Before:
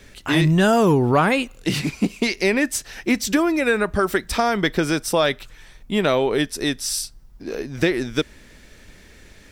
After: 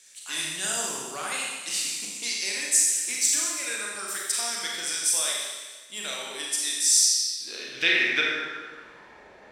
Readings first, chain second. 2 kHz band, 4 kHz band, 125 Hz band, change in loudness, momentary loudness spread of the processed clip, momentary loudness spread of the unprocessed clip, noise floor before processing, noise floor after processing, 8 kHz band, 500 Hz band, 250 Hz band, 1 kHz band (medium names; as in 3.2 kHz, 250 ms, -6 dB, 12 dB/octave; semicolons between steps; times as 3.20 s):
-3.5 dB, +1.0 dB, under -30 dB, -4.0 dB, 13 LU, 10 LU, -48 dBFS, -50 dBFS, +9.0 dB, -19.0 dB, -23.0 dB, -14.0 dB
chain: Schroeder reverb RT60 1.4 s, combs from 30 ms, DRR -3 dB; band-pass sweep 8 kHz -> 800 Hz, 6.84–9.26 s; trim +7 dB